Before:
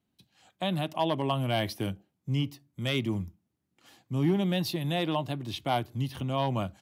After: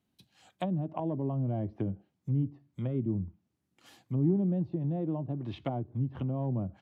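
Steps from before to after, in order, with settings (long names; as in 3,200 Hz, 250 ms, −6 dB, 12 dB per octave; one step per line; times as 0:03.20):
treble cut that deepens with the level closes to 390 Hz, closed at −27 dBFS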